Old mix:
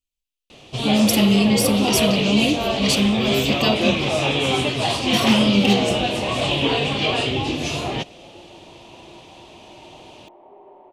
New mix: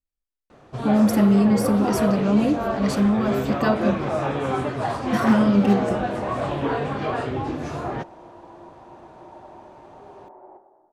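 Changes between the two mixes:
first sound −3.5 dB
second sound: entry −0.50 s
master: add high shelf with overshoot 2,100 Hz −11 dB, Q 3

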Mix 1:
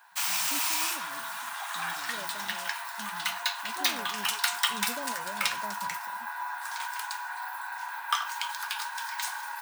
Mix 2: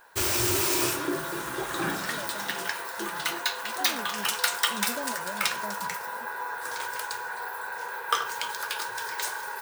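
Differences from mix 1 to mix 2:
second voice +4.0 dB
background: remove Chebyshev high-pass with heavy ripple 690 Hz, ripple 3 dB
master: remove high-pass filter 58 Hz

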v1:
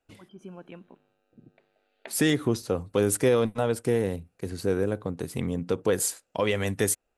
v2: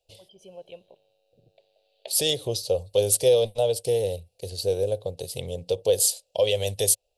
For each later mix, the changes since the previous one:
master: add drawn EQ curve 100 Hz 0 dB, 270 Hz −19 dB, 550 Hz +9 dB, 850 Hz −4 dB, 1,300 Hz −23 dB, 2,000 Hz −14 dB, 2,900 Hz +6 dB, 4,500 Hz +12 dB, 6,700 Hz +4 dB, 9,800 Hz +7 dB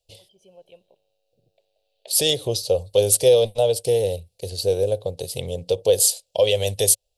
first voice −5.5 dB
second voice +4.0 dB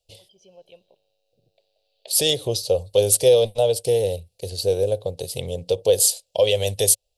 first voice: add low-pass with resonance 5,400 Hz, resonance Q 2.7

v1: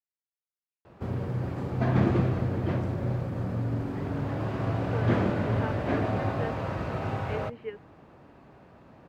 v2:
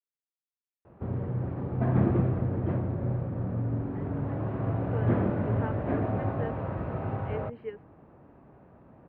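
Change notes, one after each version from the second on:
background: add high-frequency loss of the air 410 metres
master: add high-shelf EQ 2,200 Hz −10 dB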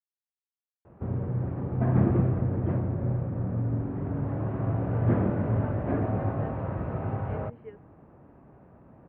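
speech −7.0 dB
master: add bass and treble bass +2 dB, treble −13 dB

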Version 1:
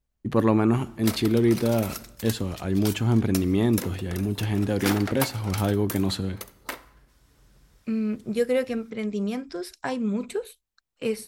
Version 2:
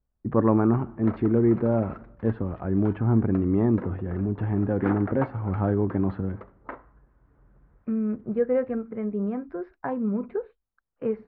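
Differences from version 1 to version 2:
background: send off
master: add low-pass filter 1,500 Hz 24 dB per octave

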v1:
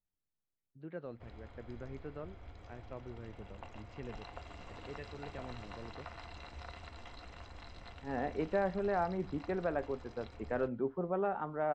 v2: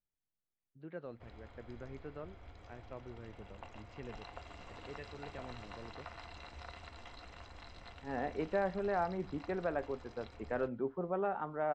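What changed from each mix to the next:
master: add low-shelf EQ 420 Hz −3 dB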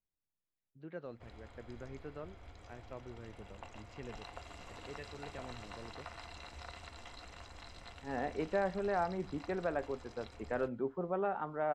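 master: remove high-frequency loss of the air 88 metres

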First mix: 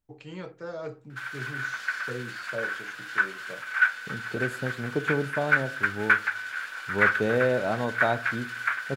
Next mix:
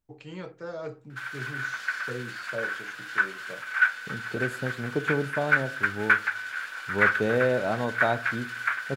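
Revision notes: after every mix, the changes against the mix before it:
nothing changed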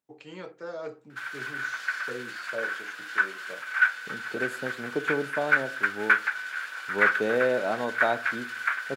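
master: add high-pass filter 250 Hz 12 dB per octave

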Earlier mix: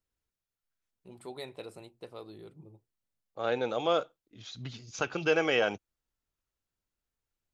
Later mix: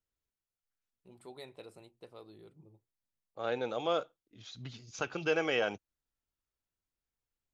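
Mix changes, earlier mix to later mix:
first voice −6.5 dB
second voice −4.0 dB

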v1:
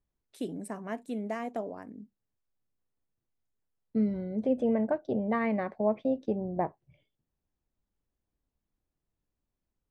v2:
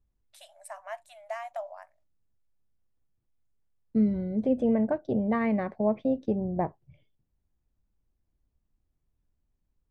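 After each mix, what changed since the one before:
first voice: add linear-phase brick-wall high-pass 560 Hz
master: add low-shelf EQ 150 Hz +11.5 dB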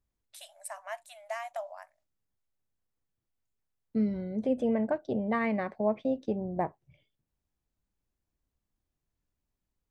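master: add spectral tilt +2 dB per octave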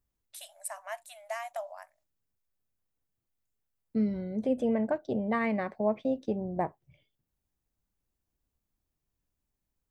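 master: add high-shelf EQ 10,000 Hz +10 dB

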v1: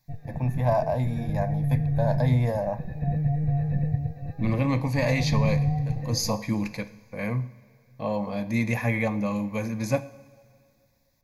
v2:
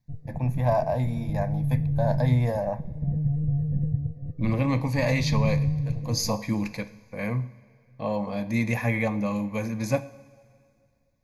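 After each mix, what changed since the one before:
background: add moving average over 54 samples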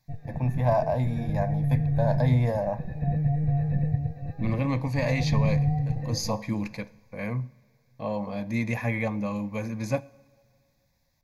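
second voice: send −8.0 dB
background: remove moving average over 54 samples
master: add high-shelf EQ 9,500 Hz −7.5 dB

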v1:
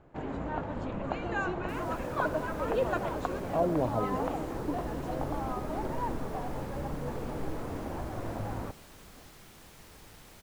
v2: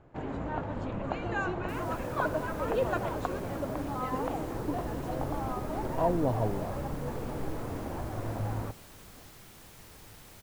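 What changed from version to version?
speech: entry +2.45 s
second sound: add high-shelf EQ 9,400 Hz +5 dB
master: add parametric band 110 Hz +6.5 dB 0.26 octaves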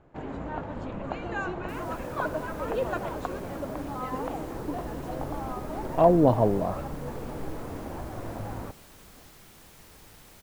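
speech +9.5 dB
master: add parametric band 110 Hz −6.5 dB 0.26 octaves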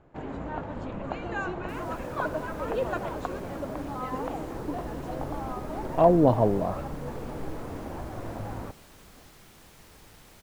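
second sound: add high-shelf EQ 9,400 Hz −5 dB

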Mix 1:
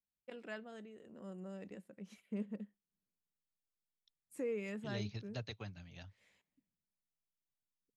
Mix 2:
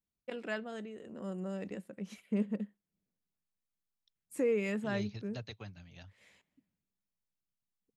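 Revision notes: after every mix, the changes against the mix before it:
first voice +8.5 dB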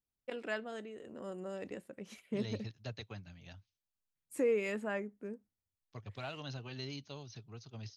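first voice: add parametric band 190 Hz −9.5 dB 0.38 octaves
second voice: entry −2.50 s

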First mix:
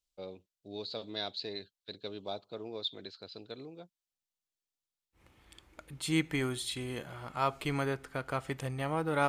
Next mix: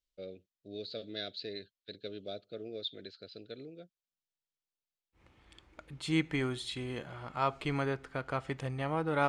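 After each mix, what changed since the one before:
first voice: add Chebyshev band-stop filter 600–1,500 Hz, order 2
master: add high-frequency loss of the air 74 metres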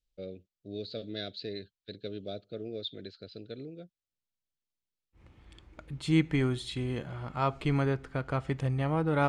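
master: add low-shelf EQ 290 Hz +10 dB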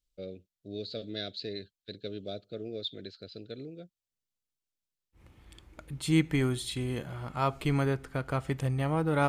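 master: remove high-frequency loss of the air 74 metres

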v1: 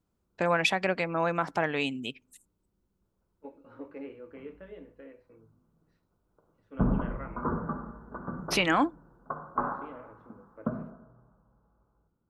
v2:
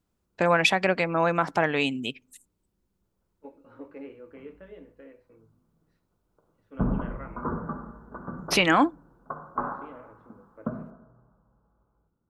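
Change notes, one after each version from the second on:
first voice +4.5 dB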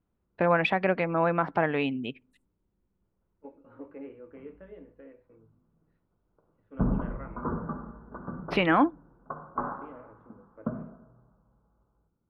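master: add high-frequency loss of the air 450 metres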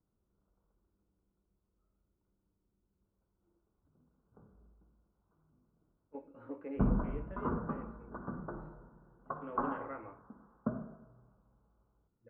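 first voice: muted
second voice: entry +2.70 s
background: send off

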